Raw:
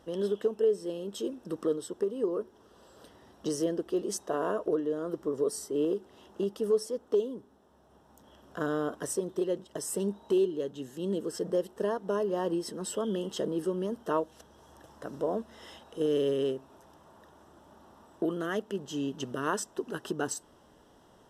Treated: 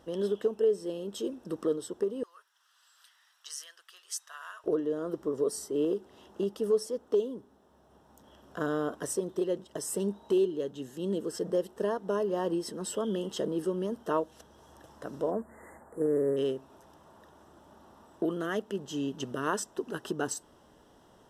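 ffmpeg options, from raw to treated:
-filter_complex "[0:a]asettb=1/sr,asplit=3[a][b][c];[a]atrim=end=2.234[d];[b]atrim=start=2.23:end=4.64,asetpts=PTS-STARTPTS,afade=t=in:d=0.004:c=qsin,afade=t=out:st=2.406:d=0.004:c=qsin,highpass=f=1.4k:w=0.5412,highpass=f=1.4k:w=1.3066[e];[c]atrim=start=4.636[f];[d][e]acrossfade=d=0.004:c1=hsin:c2=qsin[g];[g][f]acrossfade=d=0.004:c1=qsin:c2=hsin,asplit=3[h][i][j];[h]afade=t=out:st=15.3:d=0.02[k];[i]asuperstop=centerf=3900:order=20:qfactor=0.77,afade=t=in:st=15.3:d=0.02,afade=t=out:st=16.36:d=0.02[l];[j]afade=t=in:st=16.36:d=0.02[m];[k][l][m]amix=inputs=3:normalize=0"

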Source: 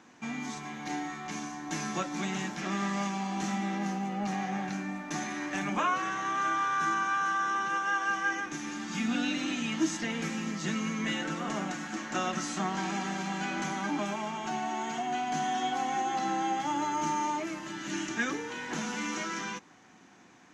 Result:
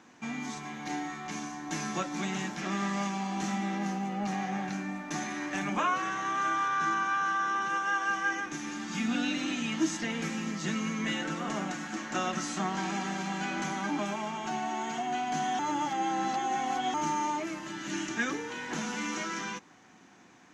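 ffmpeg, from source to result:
-filter_complex "[0:a]asettb=1/sr,asplit=3[a][b][c];[a]atrim=end=6.684[d];[b]atrim=start=6.68:end=7.62,asetpts=PTS-STARTPTS,afade=t=in:d=0.004:c=qsin,afade=t=out:st=0.936:d=0.004:c=qsin,lowpass=6.9k[e];[c]atrim=start=7.616[f];[d][e]acrossfade=d=0.004:c1=hsin:c2=qsin[g];[g][f]acrossfade=d=0.004:c1=qsin:c2=hsin,asplit=3[h][i][j];[h]atrim=end=15.592[k];[i]atrim=start=15.588:end=16.942,asetpts=PTS-STARTPTS,areverse[l];[j]atrim=start=16.938[m];[k][l]acrossfade=d=0.004:c1=hsin:c2=hsin[n];[n][m]acrossfade=d=0.004:c1=hsin:c2=hsin"

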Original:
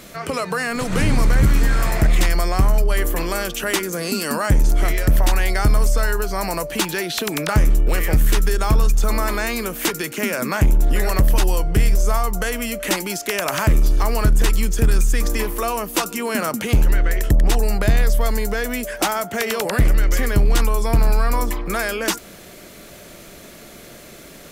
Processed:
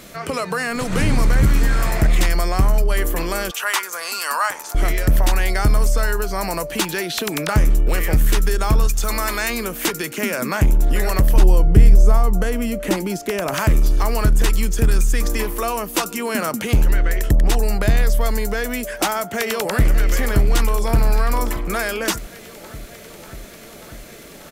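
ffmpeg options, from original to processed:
-filter_complex "[0:a]asettb=1/sr,asplit=3[a][b][c];[a]atrim=end=3.514[d];[b]atrim=start=3.51:end=4.75,asetpts=PTS-STARTPTS,afade=t=in:d=0.004:c=qsin,afade=t=out:st=1.236:d=0.004:c=qsin,highpass=f=1k:t=q:w=2.1[e];[c]atrim=start=4.746[f];[d][e]acrossfade=d=0.004:c1=hsin:c2=qsin[g];[g][f]acrossfade=d=0.004:c1=qsin:c2=hsin,asettb=1/sr,asplit=3[h][i][j];[h]atrim=end=8.874[k];[i]atrim=start=8.87:end=9.5,asetpts=PTS-STARTPTS,afade=t=in:d=0.004:c=qsin,afade=t=out:st=0.626:d=0.004:c=qsin,tiltshelf=f=1.1k:g=-4.5[l];[j]atrim=start=9.496[m];[k][l]acrossfade=d=0.004:c1=hsin:c2=qsin[n];[n][m]acrossfade=d=0.004:c1=qsin:c2=hsin,asettb=1/sr,asplit=3[o][p][q];[o]atrim=end=11.364[r];[p]atrim=start=11.36:end=13.54,asetpts=PTS-STARTPTS,afade=t=in:d=0.004:c=qsin,afade=t=out:st=2.176:d=0.004:c=qsin,tiltshelf=f=730:g=6.5[s];[q]atrim=start=13.536[t];[r][s]acrossfade=d=0.004:c1=hsin:c2=qsin[u];[u][t]acrossfade=d=0.004:c1=qsin:c2=hsin,asplit=2[v][w];[w]afade=t=in:st=19.09:d=0.01,afade=t=out:st=19.9:d=0.01,aecho=0:1:590|1180|1770|2360|2950|3540|4130|4720|5310|5900|6490|7080:0.237137|0.18971|0.151768|0.121414|0.0971315|0.0777052|0.0621641|0.0497313|0.039785|0.031828|0.0254624|0.0203699[x];[v][x]amix=inputs=2:normalize=0"

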